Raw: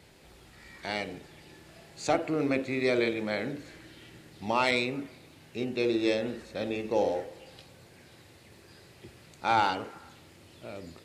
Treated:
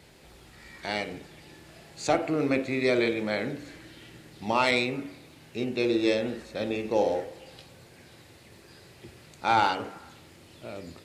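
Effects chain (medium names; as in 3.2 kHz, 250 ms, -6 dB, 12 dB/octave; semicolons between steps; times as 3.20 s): de-hum 95.37 Hz, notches 35; trim +2.5 dB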